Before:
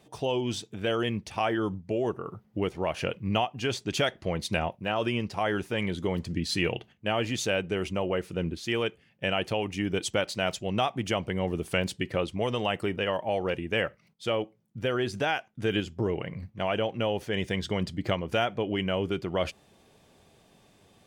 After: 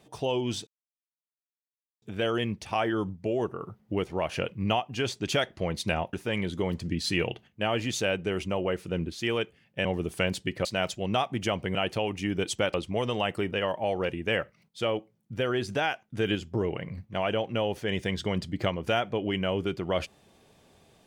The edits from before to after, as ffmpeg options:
-filter_complex "[0:a]asplit=7[a][b][c][d][e][f][g];[a]atrim=end=0.67,asetpts=PTS-STARTPTS,afade=t=out:st=0.666:d=0.004:c=hsin,apad=pad_dur=1.35[h];[b]atrim=start=0.67:end=4.782,asetpts=PTS-STARTPTS,afade=t=in:d=0.004:c=hsin[i];[c]atrim=start=5.578:end=9.302[j];[d]atrim=start=11.388:end=12.192[k];[e]atrim=start=10.288:end=11.392[l];[f]atrim=start=9.298:end=10.292[m];[g]atrim=start=12.188[n];[h][i]concat=n=2:v=0:a=1[o];[o][j]acrossfade=d=0.004:c1=hsin:c2=hsin[p];[p][k]acrossfade=d=0.004:c1=hsin:c2=hsin[q];[q][l]acrossfade=d=0.004:c1=hsin:c2=hsin[r];[r][m]acrossfade=d=0.004:c1=hsin:c2=hsin[s];[s][n]acrossfade=d=0.004:c1=hsin:c2=hsin"

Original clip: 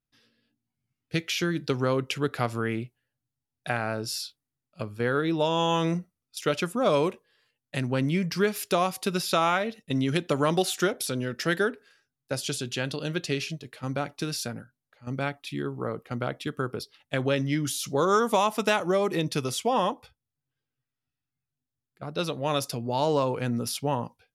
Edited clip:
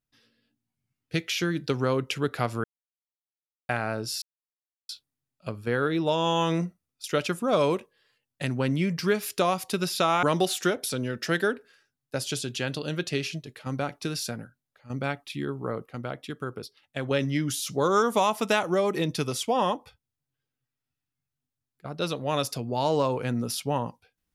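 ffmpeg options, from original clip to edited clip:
-filter_complex "[0:a]asplit=7[a][b][c][d][e][f][g];[a]atrim=end=2.64,asetpts=PTS-STARTPTS,afade=t=out:st=2.636:d=0.004:c=hsin[h];[b]atrim=start=2.64:end=3.69,asetpts=PTS-STARTPTS,volume=0[i];[c]atrim=start=3.69:end=4.22,asetpts=PTS-STARTPTS,afade=t=in:d=0.004:c=hsin,afade=t=out:st=0.526:d=0.004:c=hsin,apad=pad_dur=0.67[j];[d]atrim=start=4.22:end=9.562,asetpts=PTS-STARTPTS,afade=t=in:d=0.004:c=hsin[k];[e]atrim=start=10.398:end=16.042[l];[f]atrim=start=16.038:end=17.282,asetpts=PTS-STARTPTS,volume=-4dB[m];[g]atrim=start=17.278[n];[h][i][j][k]concat=n=4:v=0:a=1[o];[o][l]acrossfade=d=0.004:c1=hsin:c2=hsin[p];[p][m]acrossfade=d=0.004:c1=hsin:c2=hsin[q];[q][n]acrossfade=d=0.004:c1=hsin:c2=hsin"

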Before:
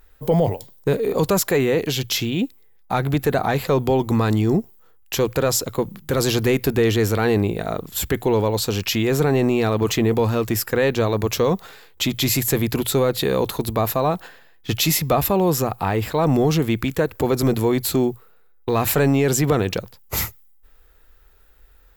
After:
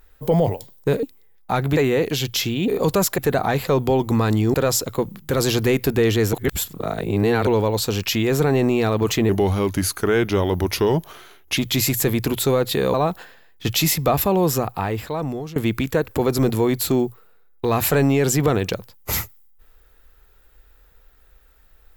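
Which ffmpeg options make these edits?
-filter_complex "[0:a]asplit=12[a][b][c][d][e][f][g][h][i][j][k][l];[a]atrim=end=1.032[m];[b]atrim=start=2.438:end=3.182[n];[c]atrim=start=1.528:end=2.442[o];[d]atrim=start=1.028:end=1.532[p];[e]atrim=start=3.178:end=4.542[q];[f]atrim=start=5.338:end=7.132[r];[g]atrim=start=7.128:end=8.272,asetpts=PTS-STARTPTS,areverse[s];[h]atrim=start=8.268:end=10.094[t];[i]atrim=start=10.09:end=12.05,asetpts=PTS-STARTPTS,asetrate=37926,aresample=44100[u];[j]atrim=start=12.046:end=13.422[v];[k]atrim=start=13.978:end=16.6,asetpts=PTS-STARTPTS,afade=t=out:st=1.642:d=0.98:silence=0.112202[w];[l]atrim=start=16.6,asetpts=PTS-STARTPTS,afade=t=in:d=0.004:c=hsin:silence=0.112202[x];[m][n]acrossfade=d=0.004:c1=hsin:c2=hsin[y];[y][o]acrossfade=d=0.004:c1=hsin:c2=hsin[z];[z][p]acrossfade=d=0.004:c1=hsin:c2=hsin[aa];[aa][q]acrossfade=d=0.004:c1=hsin:c2=hsin[ab];[ab][r]acrossfade=d=0.004:c1=hsin:c2=hsin[ac];[ac][s]acrossfade=d=0.004:c1=hsin:c2=hsin[ad];[ad][t]acrossfade=d=0.004:c1=hsin:c2=hsin[ae];[ae][u]acrossfade=d=0.004:c1=hsin:c2=hsin[af];[af][v]acrossfade=d=0.004:c1=hsin:c2=hsin[ag];[w][x]concat=n=2:v=0:a=1[ah];[ag][ah]acrossfade=d=0.004:c1=hsin:c2=hsin"

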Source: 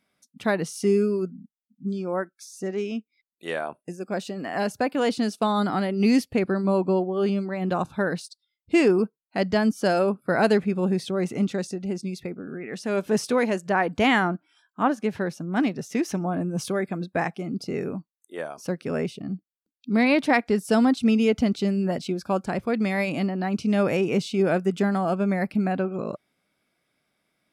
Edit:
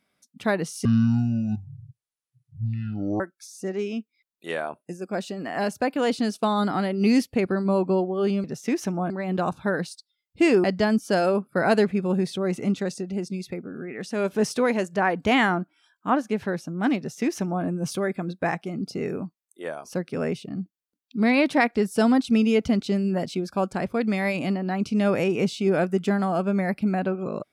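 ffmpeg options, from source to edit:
-filter_complex "[0:a]asplit=6[a][b][c][d][e][f];[a]atrim=end=0.854[g];[b]atrim=start=0.85:end=2.19,asetpts=PTS-STARTPTS,asetrate=25137,aresample=44100[h];[c]atrim=start=2.186:end=7.432[i];[d]atrim=start=15.708:end=16.372[j];[e]atrim=start=7.428:end=8.972[k];[f]atrim=start=9.368[l];[g][h]acrossfade=d=0.004:c1=hsin:c2=hsin[m];[m][i]acrossfade=d=0.004:c1=hsin:c2=hsin[n];[n][j]acrossfade=d=0.004:c1=hsin:c2=hsin[o];[o][k]acrossfade=d=0.004:c1=hsin:c2=hsin[p];[p][l]acrossfade=d=0.004:c1=hsin:c2=hsin"

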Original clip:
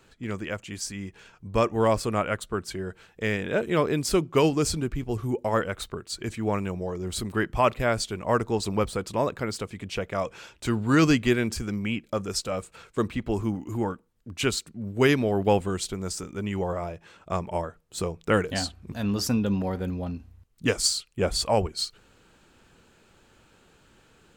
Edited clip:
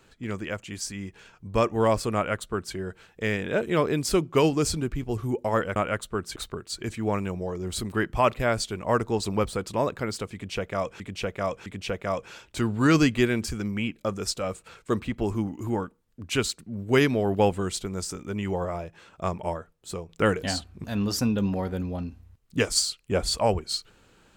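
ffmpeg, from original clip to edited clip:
-filter_complex "[0:a]asplit=6[a][b][c][d][e][f];[a]atrim=end=5.762[g];[b]atrim=start=2.148:end=2.752[h];[c]atrim=start=5.758:end=10.402[i];[d]atrim=start=9.738:end=10.402[j];[e]atrim=start=9.738:end=18.17,asetpts=PTS-STARTPTS,afade=t=out:st=7.702:d=0.73:silence=0.446684[k];[f]atrim=start=18.17,asetpts=PTS-STARTPTS,afade=t=in:d=0.004:c=hsin:silence=0.446684[l];[g][h]acrossfade=d=0.004:c1=hsin:c2=hsin[m];[m][i]acrossfade=d=0.004:c1=hsin:c2=hsin[n];[n][j]acrossfade=d=0.004:c1=hsin:c2=hsin[o];[k][l]concat=n=2:v=0:a=1[p];[o][p]acrossfade=d=0.004:c1=hsin:c2=hsin"

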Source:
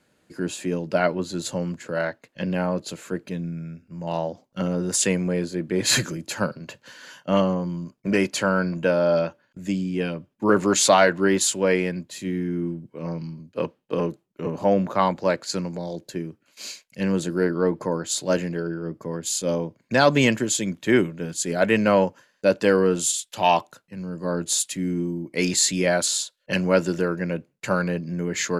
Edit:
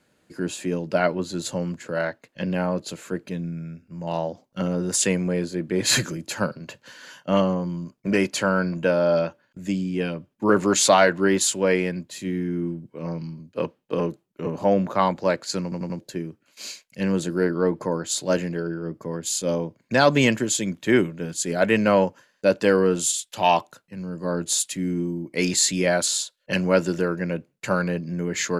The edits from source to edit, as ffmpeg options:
-filter_complex "[0:a]asplit=5[a][b][c][d][e];[a]atrim=end=15.722[f];[b]atrim=start=15.628:end=15.722[g];[c]atrim=start=15.628:end=15.722[h];[d]atrim=start=15.628:end=15.722[i];[e]atrim=start=15.988[j];[f][g]acrossfade=d=0.004:c1=hsin:c2=hsin[k];[k][h]acrossfade=d=0.004:c1=hsin:c2=hsin[l];[l][i]acrossfade=d=0.004:c1=hsin:c2=hsin[m];[m][j]acrossfade=d=0.004:c1=hsin:c2=hsin"

